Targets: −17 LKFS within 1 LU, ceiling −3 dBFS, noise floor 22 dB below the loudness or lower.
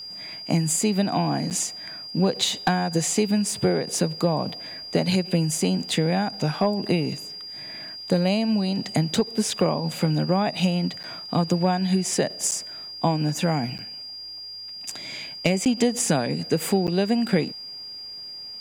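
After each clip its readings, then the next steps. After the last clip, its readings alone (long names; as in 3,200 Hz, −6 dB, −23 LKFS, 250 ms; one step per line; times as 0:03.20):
number of dropouts 6; longest dropout 8.6 ms; interfering tone 4,800 Hz; level of the tone −35 dBFS; integrated loudness −24.0 LKFS; sample peak −10.0 dBFS; target loudness −17.0 LKFS
→ repair the gap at 0:01.50/0:11.03/0:12.51/0:13.78/0:15.65/0:16.87, 8.6 ms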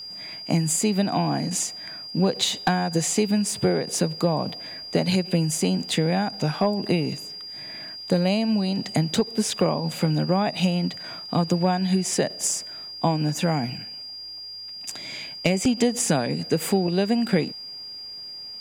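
number of dropouts 0; interfering tone 4,800 Hz; level of the tone −35 dBFS
→ notch filter 4,800 Hz, Q 30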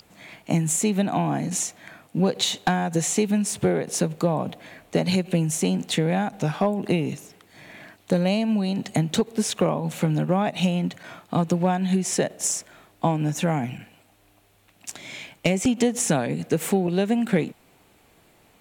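interfering tone none found; integrated loudness −24.0 LKFS; sample peak −10.5 dBFS; target loudness −17.0 LKFS
→ level +7 dB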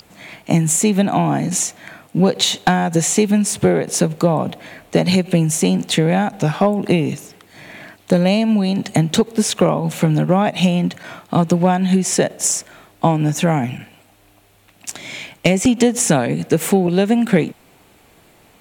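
integrated loudness −17.0 LKFS; sample peak −3.5 dBFS; background noise floor −52 dBFS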